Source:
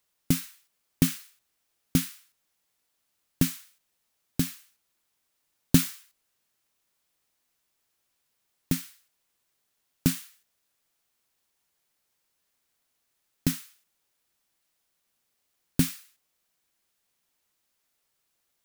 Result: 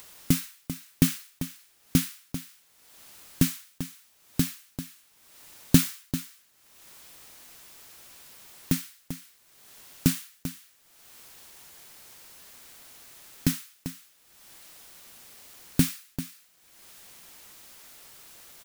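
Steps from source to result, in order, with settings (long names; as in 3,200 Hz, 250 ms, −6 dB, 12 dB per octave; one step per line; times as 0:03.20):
single-tap delay 393 ms −12.5 dB
upward compression, threshold −31 dBFS
level +1.5 dB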